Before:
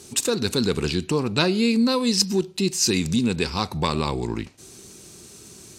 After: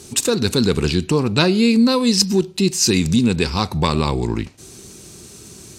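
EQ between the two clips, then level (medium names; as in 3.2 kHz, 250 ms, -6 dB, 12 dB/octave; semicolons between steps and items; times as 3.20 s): bass shelf 170 Hz +5 dB; +4.0 dB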